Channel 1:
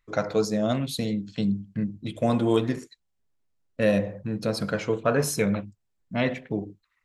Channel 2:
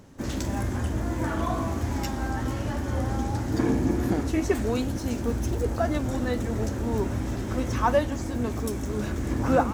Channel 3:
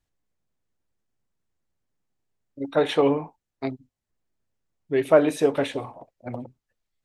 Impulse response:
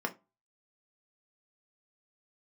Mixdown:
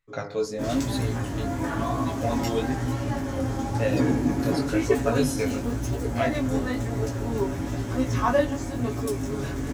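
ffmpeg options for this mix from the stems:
-filter_complex "[0:a]volume=-2.5dB[a];[1:a]adelay=400,volume=2.5dB[b];[a][b]amix=inputs=2:normalize=0,aecho=1:1:7.2:0.62,flanger=delay=15.5:depth=7.6:speed=1"

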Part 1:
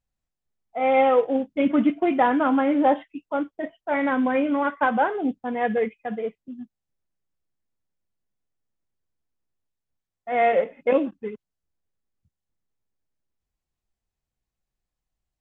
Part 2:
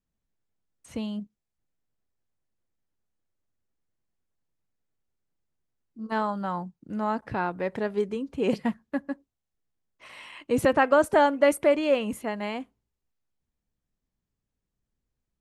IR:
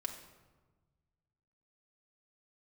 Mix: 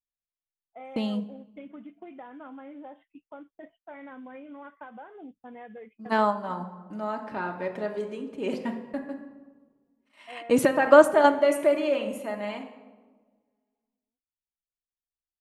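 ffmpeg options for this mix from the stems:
-filter_complex "[0:a]agate=range=-9dB:threshold=-43dB:ratio=16:detection=peak,acompressor=threshold=-27dB:ratio=16,volume=-13.5dB,asplit=2[a][b];[1:a]highpass=190,agate=range=-40dB:threshold=-44dB:ratio=16:detection=peak,volume=1.5dB,asplit=2[c][d];[d]volume=-4dB[e];[b]apad=whole_len=679370[f];[c][f]sidechaingate=range=-33dB:threshold=-47dB:ratio=16:detection=peak[g];[2:a]atrim=start_sample=2205[h];[e][h]afir=irnorm=-1:irlink=0[i];[a][g][i]amix=inputs=3:normalize=0"

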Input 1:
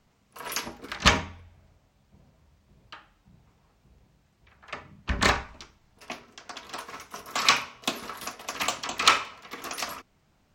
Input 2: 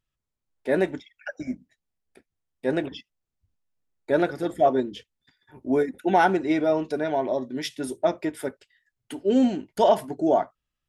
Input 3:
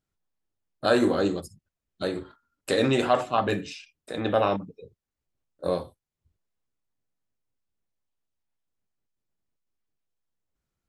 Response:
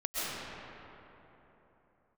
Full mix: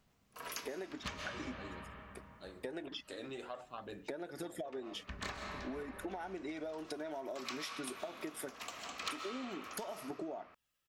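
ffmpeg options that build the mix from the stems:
-filter_complex "[0:a]bandreject=f=880:w=21,asoftclip=type=hard:threshold=-7dB,volume=-8dB,asplit=2[a][b];[b]volume=-15.5dB[c];[1:a]highpass=f=320:p=1,highshelf=f=8.3k:g=7,acompressor=threshold=-25dB:ratio=6,volume=2dB,asplit=2[d][e];[2:a]lowshelf=f=150:g=-10.5,adelay=400,volume=-20dB[f];[e]apad=whole_len=465023[g];[a][g]sidechaincompress=threshold=-37dB:ratio=8:attack=16:release=1130[h];[d][f]amix=inputs=2:normalize=0,aphaser=in_gain=1:out_gain=1:delay=3.2:decay=0.3:speed=0.49:type=sinusoidal,acompressor=threshold=-35dB:ratio=5,volume=0dB[i];[3:a]atrim=start_sample=2205[j];[c][j]afir=irnorm=-1:irlink=0[k];[h][i][k]amix=inputs=3:normalize=0,acompressor=threshold=-42dB:ratio=2.5"

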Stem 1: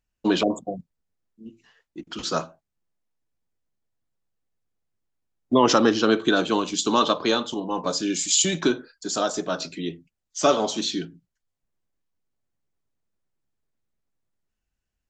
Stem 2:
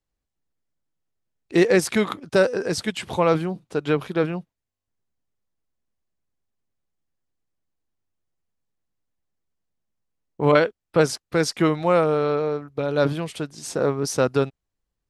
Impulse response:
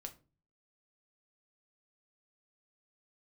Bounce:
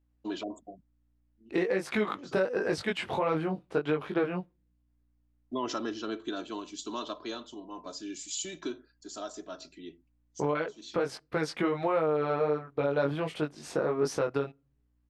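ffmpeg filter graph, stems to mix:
-filter_complex "[0:a]aeval=exprs='val(0)+0.00178*(sin(2*PI*60*n/s)+sin(2*PI*2*60*n/s)/2+sin(2*PI*3*60*n/s)/3+sin(2*PI*4*60*n/s)/4+sin(2*PI*5*60*n/s)/5)':c=same,aecho=1:1:3:0.52,volume=-17dB[a];[1:a]bass=f=250:g=-7,treble=f=4k:g=-14,acompressor=threshold=-20dB:ratio=6,flanger=delay=19:depth=2.8:speed=1.5,volume=2dB,asplit=3[b][c][d];[c]volume=-16dB[e];[d]apad=whole_len=666004[f];[a][f]sidechaincompress=threshold=-38dB:ratio=8:attack=7.2:release=275[g];[2:a]atrim=start_sample=2205[h];[e][h]afir=irnorm=-1:irlink=0[i];[g][b][i]amix=inputs=3:normalize=0,alimiter=limit=-18dB:level=0:latency=1:release=200"

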